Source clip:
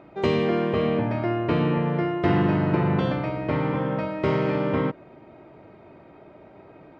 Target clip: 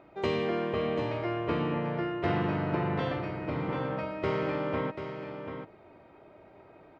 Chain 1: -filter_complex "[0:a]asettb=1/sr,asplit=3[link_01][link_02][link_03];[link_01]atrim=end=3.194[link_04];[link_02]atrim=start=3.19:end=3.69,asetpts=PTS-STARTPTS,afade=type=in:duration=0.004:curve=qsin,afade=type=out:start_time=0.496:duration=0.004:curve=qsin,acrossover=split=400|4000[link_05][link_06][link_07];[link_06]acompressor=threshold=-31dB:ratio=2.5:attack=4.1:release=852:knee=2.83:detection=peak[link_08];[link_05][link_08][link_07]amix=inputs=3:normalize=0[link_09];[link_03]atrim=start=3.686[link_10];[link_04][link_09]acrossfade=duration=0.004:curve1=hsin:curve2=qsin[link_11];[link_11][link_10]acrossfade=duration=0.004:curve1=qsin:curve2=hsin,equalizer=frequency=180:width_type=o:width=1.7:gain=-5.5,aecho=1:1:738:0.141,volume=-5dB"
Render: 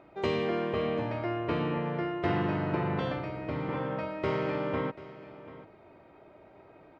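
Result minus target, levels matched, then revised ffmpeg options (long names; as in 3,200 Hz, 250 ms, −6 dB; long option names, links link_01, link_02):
echo-to-direct −8.5 dB
-filter_complex "[0:a]asettb=1/sr,asplit=3[link_01][link_02][link_03];[link_01]atrim=end=3.194[link_04];[link_02]atrim=start=3.19:end=3.69,asetpts=PTS-STARTPTS,afade=type=in:duration=0.004:curve=qsin,afade=type=out:start_time=0.496:duration=0.004:curve=qsin,acrossover=split=400|4000[link_05][link_06][link_07];[link_06]acompressor=threshold=-31dB:ratio=2.5:attack=4.1:release=852:knee=2.83:detection=peak[link_08];[link_05][link_08][link_07]amix=inputs=3:normalize=0[link_09];[link_03]atrim=start=3.686[link_10];[link_04][link_09]acrossfade=duration=0.004:curve1=hsin:curve2=qsin[link_11];[link_11][link_10]acrossfade=duration=0.004:curve1=qsin:curve2=hsin,equalizer=frequency=180:width_type=o:width=1.7:gain=-5.5,aecho=1:1:738:0.376,volume=-5dB"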